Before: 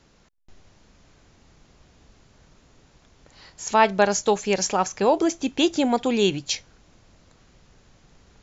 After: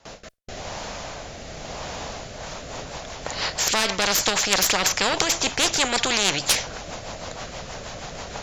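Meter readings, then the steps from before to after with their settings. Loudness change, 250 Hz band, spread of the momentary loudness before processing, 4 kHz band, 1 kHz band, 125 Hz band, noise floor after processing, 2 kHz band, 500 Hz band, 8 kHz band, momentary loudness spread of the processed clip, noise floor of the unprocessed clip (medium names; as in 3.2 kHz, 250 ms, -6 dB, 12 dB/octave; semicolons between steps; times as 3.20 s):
+0.5 dB, -8.0 dB, 8 LU, +9.0 dB, -2.5 dB, +1.0 dB, -39 dBFS, +6.0 dB, -5.5 dB, no reading, 16 LU, -58 dBFS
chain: single-diode clipper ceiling -15 dBFS; gate with hold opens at -48 dBFS; FFT filter 360 Hz 0 dB, 640 Hz +15 dB, 1.4 kHz +8 dB; in parallel at +2.5 dB: peak limiter -4 dBFS, peak gain reduction 8 dB; on the sum: rotary cabinet horn 0.9 Hz, later 6.3 Hz, at 2.09 s; spectrum-flattening compressor 4:1; trim -6.5 dB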